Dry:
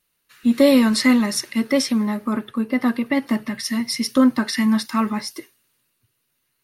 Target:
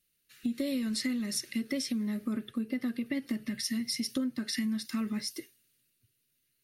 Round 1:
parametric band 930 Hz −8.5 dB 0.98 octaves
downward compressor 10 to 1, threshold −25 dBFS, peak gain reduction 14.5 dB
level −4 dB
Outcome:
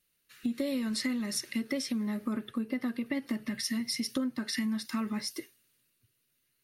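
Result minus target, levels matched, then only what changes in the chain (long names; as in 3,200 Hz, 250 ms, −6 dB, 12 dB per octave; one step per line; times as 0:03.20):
1,000 Hz band +6.0 dB
change: parametric band 930 Hz −20 dB 0.98 octaves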